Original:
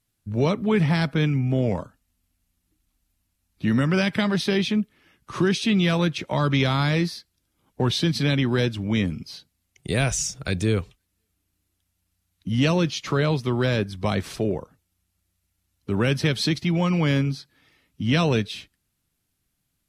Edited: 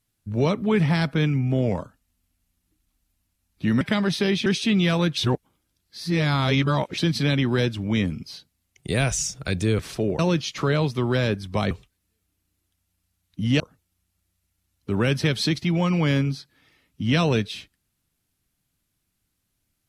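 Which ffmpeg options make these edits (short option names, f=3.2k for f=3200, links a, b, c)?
-filter_complex "[0:a]asplit=9[a][b][c][d][e][f][g][h][i];[a]atrim=end=3.812[j];[b]atrim=start=4.078:end=4.732[k];[c]atrim=start=5.458:end=6.172[l];[d]atrim=start=6.168:end=7.982,asetpts=PTS-STARTPTS,areverse[m];[e]atrim=start=7.978:end=10.792[n];[f]atrim=start=14.198:end=14.602[o];[g]atrim=start=12.678:end=14.202[p];[h]atrim=start=10.788:end=12.682[q];[i]atrim=start=14.598[r];[j][k]acrossfade=d=0.004:c1=hsin:c2=hsin[s];[s][l]acrossfade=d=0.004:c1=hsin:c2=hsin[t];[t][m]acrossfade=d=0.004:c1=hsin:c2=hsin[u];[u][n]acrossfade=d=0.004:c1=hsin:c2=hsin[v];[v][o]acrossfade=d=0.004:c1=hsin:c2=hsin[w];[w][p]acrossfade=d=0.004:c1=hsin:c2=hsin[x];[x][q]acrossfade=d=0.004:c1=hsin:c2=hsin[y];[y][r]acrossfade=d=0.004:c1=hsin:c2=hsin"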